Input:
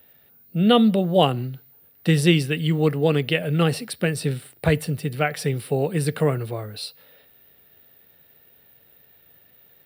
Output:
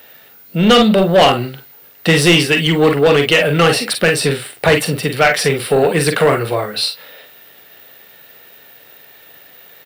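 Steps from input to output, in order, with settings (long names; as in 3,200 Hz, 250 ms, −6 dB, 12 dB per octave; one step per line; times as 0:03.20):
ambience of single reflections 42 ms −8.5 dB, 52 ms −12 dB
bit reduction 11 bits
mid-hump overdrive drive 22 dB, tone 5,100 Hz, clips at −2.5 dBFS
level +1.5 dB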